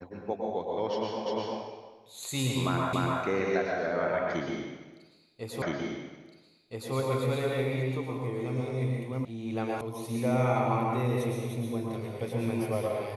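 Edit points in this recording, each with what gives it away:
1.26 s: repeat of the last 0.35 s
2.93 s: repeat of the last 0.29 s
5.62 s: repeat of the last 1.32 s
9.25 s: sound stops dead
9.81 s: sound stops dead

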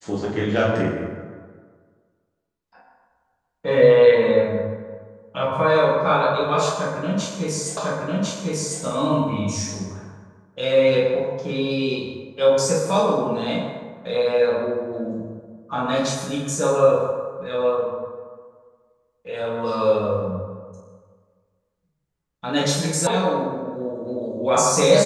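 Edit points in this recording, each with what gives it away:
7.77 s: repeat of the last 1.05 s
23.07 s: sound stops dead

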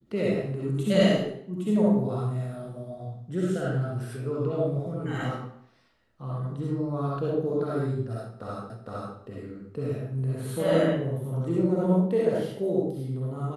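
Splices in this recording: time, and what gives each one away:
8.70 s: repeat of the last 0.46 s

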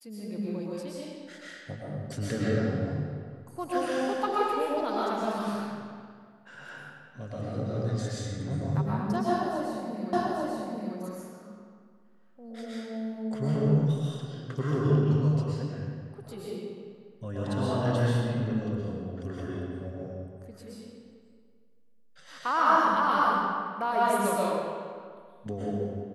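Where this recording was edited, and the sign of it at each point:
10.13 s: repeat of the last 0.84 s

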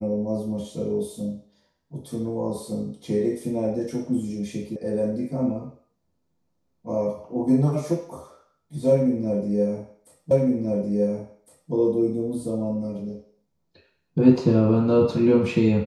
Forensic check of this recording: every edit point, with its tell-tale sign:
4.76 s: sound stops dead
10.31 s: repeat of the last 1.41 s

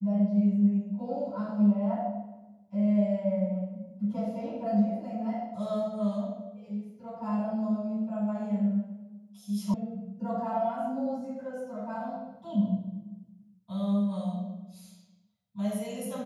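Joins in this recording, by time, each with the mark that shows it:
9.74 s: sound stops dead

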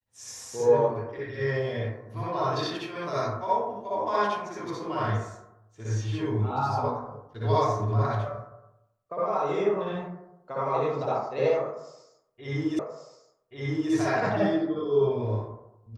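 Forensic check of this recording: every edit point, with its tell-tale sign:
12.79 s: repeat of the last 1.13 s

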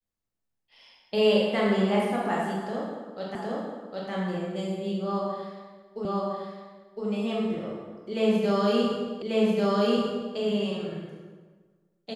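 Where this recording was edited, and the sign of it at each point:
3.35 s: repeat of the last 0.76 s
6.05 s: repeat of the last 1.01 s
9.22 s: repeat of the last 1.14 s

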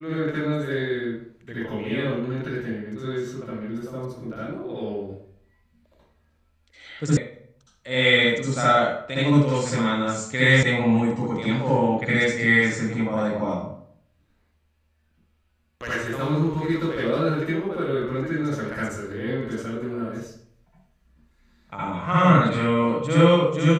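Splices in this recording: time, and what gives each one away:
7.17 s: sound stops dead
10.63 s: sound stops dead

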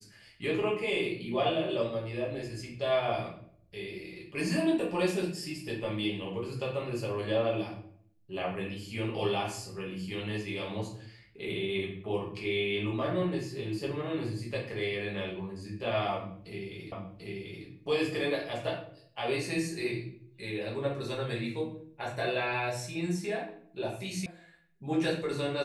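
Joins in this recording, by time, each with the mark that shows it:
16.92 s: repeat of the last 0.74 s
24.26 s: sound stops dead

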